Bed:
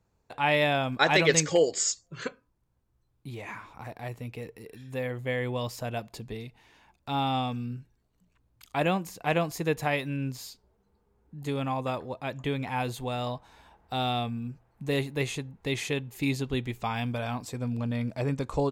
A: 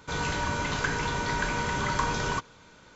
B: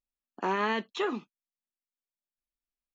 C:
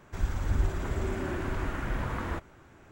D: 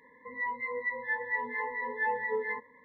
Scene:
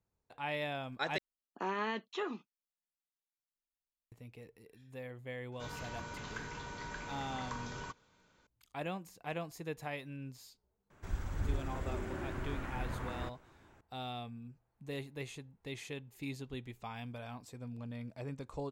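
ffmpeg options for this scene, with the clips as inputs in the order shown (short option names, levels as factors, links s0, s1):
-filter_complex "[0:a]volume=0.211,asplit=2[s0][s1];[s0]atrim=end=1.184[s2];[2:a]atrim=end=2.94,asetpts=PTS-STARTPTS,volume=0.422[s3];[s1]atrim=start=4.116[s4];[1:a]atrim=end=2.95,asetpts=PTS-STARTPTS,volume=0.168,afade=t=in:d=0.004:c=hsin,afade=t=out:st=2.946:d=0.004:c=hsin,adelay=5520[s5];[3:a]atrim=end=2.91,asetpts=PTS-STARTPTS,volume=0.398,afade=t=in:d=0.004:c=hsin,afade=t=out:st=2.906:d=0.004:c=hsin,adelay=480690S[s6];[s2][s3]acrossfade=d=0.004:c1=hsin:c2=hsin[s7];[s7][s4]acrossfade=d=0.004:c1=hsin:c2=hsin[s8];[s8][s5][s6]amix=inputs=3:normalize=0"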